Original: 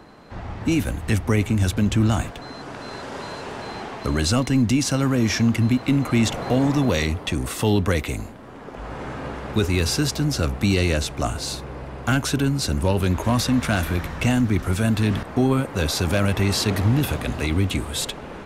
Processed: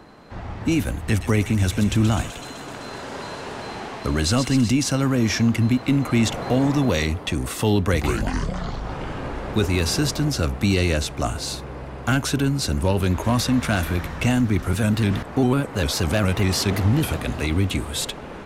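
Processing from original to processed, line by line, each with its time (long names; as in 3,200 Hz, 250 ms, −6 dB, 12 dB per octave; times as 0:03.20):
0:01.04–0:04.70: delay with a high-pass on its return 127 ms, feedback 77%, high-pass 2,400 Hz, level −7 dB
0:07.80–0:10.30: delay with pitch and tempo change per echo 131 ms, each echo −6 semitones, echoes 3
0:14.73–0:17.21: pitch modulation by a square or saw wave square 5 Hz, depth 100 cents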